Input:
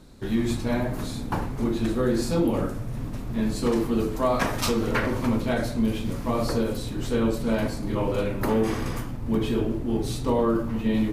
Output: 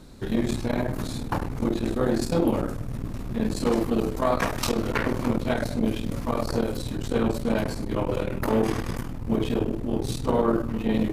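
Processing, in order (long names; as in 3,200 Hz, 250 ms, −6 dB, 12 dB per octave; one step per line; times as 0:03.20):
saturating transformer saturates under 310 Hz
level +3 dB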